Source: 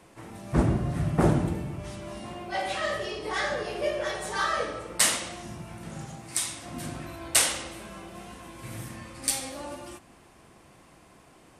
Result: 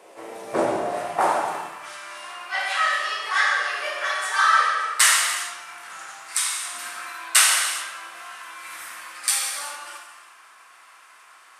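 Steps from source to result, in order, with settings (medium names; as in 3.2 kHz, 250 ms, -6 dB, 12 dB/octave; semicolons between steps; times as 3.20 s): high-pass sweep 500 Hz -> 1.3 kHz, 0.52–1.84 s; gated-style reverb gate 440 ms falling, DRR -0.5 dB; trim +3 dB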